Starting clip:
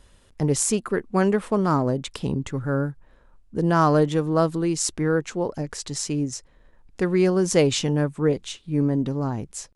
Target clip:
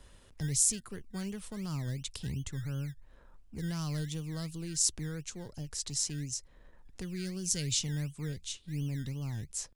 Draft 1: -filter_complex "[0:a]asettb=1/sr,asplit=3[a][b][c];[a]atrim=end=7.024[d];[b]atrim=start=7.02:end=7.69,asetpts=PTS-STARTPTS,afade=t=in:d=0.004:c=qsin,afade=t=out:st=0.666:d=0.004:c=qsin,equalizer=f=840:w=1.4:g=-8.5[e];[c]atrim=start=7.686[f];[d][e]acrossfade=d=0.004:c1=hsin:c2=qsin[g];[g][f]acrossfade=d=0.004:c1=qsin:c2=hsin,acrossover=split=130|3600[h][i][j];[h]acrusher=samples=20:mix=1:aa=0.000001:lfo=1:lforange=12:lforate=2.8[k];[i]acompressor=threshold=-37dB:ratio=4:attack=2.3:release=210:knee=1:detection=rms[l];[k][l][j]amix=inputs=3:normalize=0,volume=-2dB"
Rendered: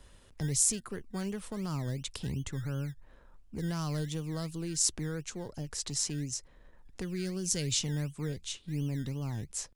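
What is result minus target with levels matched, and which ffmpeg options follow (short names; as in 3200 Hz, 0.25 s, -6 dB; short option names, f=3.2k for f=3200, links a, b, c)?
compressor: peak gain reduction -6 dB
-filter_complex "[0:a]asettb=1/sr,asplit=3[a][b][c];[a]atrim=end=7.024[d];[b]atrim=start=7.02:end=7.69,asetpts=PTS-STARTPTS,afade=t=in:d=0.004:c=qsin,afade=t=out:st=0.666:d=0.004:c=qsin,equalizer=f=840:w=1.4:g=-8.5[e];[c]atrim=start=7.686[f];[d][e]acrossfade=d=0.004:c1=hsin:c2=qsin[g];[g][f]acrossfade=d=0.004:c1=qsin:c2=hsin,acrossover=split=130|3600[h][i][j];[h]acrusher=samples=20:mix=1:aa=0.000001:lfo=1:lforange=12:lforate=2.8[k];[i]acompressor=threshold=-45dB:ratio=4:attack=2.3:release=210:knee=1:detection=rms[l];[k][l][j]amix=inputs=3:normalize=0,volume=-2dB"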